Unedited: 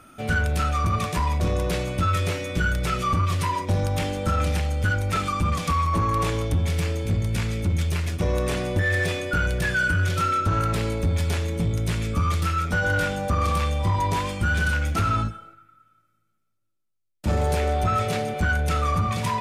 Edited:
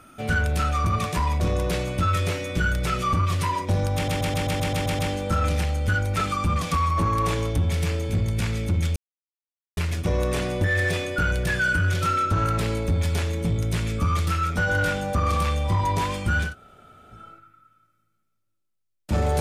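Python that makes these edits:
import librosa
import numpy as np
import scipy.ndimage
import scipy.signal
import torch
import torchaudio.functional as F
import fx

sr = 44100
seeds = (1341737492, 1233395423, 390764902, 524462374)

y = fx.edit(x, sr, fx.stutter(start_s=3.95, slice_s=0.13, count=9),
    fx.insert_silence(at_s=7.92, length_s=0.81),
    fx.room_tone_fill(start_s=14.62, length_s=0.72, crossfade_s=0.16), tone=tone)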